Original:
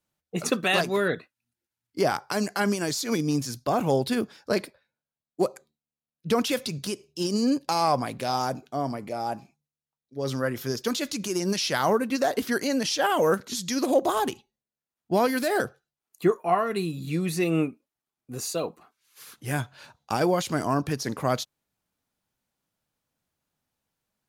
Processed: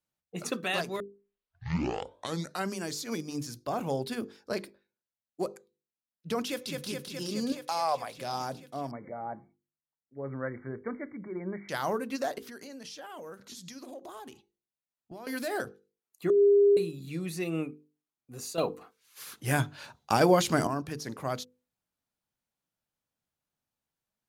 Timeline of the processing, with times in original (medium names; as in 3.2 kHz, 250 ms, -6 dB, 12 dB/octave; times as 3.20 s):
1.00 s: tape start 1.72 s
6.46–6.87 s: echo throw 210 ms, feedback 80%, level -3 dB
7.52–8.18 s: resonant low shelf 400 Hz -10 dB, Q 1.5
8.91–11.69 s: brick-wall FIR low-pass 2.3 kHz
12.38–15.27 s: compression, threshold -34 dBFS
16.30–16.77 s: bleep 404 Hz -7.5 dBFS
18.58–20.67 s: gain +9.5 dB
whole clip: hum notches 50/100/150/200/250/300/350/400/450/500 Hz; trim -7.5 dB